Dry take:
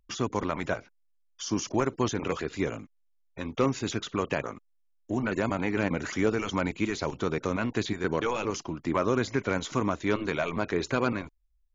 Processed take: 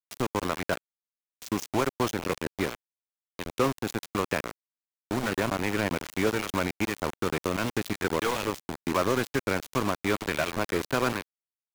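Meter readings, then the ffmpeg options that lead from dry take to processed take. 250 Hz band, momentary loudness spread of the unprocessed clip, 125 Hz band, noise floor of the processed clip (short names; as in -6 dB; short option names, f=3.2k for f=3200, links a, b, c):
-1.0 dB, 7 LU, -1.0 dB, under -85 dBFS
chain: -filter_complex "[0:a]aeval=exprs='val(0)*gte(abs(val(0)),0.0398)':c=same,acrossover=split=450|3000[a][b][c];[a]acompressor=threshold=-30dB:ratio=2[d];[d][b][c]amix=inputs=3:normalize=0,volume=2dB"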